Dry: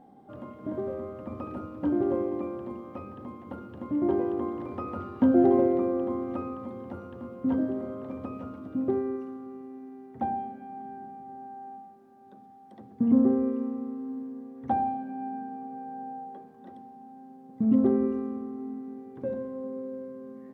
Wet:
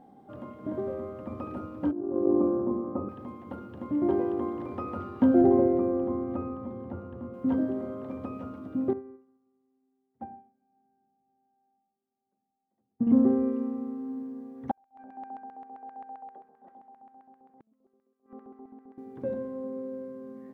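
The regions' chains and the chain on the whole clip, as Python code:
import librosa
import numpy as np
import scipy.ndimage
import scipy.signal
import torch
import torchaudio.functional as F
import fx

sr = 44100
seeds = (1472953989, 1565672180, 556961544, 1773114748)

y = fx.chain(x, sr, fx.cheby1_lowpass(hz=1200.0, order=3),
    fx.peak_eq(hz=310.0, db=7.5, octaves=1.7),
    fx.over_compress(threshold_db=-25.0, ratio=-0.5), at=(1.91, 3.09))
y = fx.chain(y, sr, fx.lowpass(hz=1300.0, slope=6),
    fx.low_shelf(hz=78.0, db=11.0), at=(5.41, 7.34))
y = fx.chain(y, sr, fx.air_absorb(metres=450.0),
    fx.upward_expand(threshold_db=-42.0, expansion=2.5), at=(8.93, 13.07))
y = fx.chain(y, sr, fx.high_shelf(hz=2100.0, db=-11.5),
    fx.gate_flip(shuts_db=-23.0, range_db=-35),
    fx.filter_lfo_bandpass(shape='square', hz=7.6, low_hz=760.0, high_hz=1800.0, q=1.3), at=(14.71, 18.98))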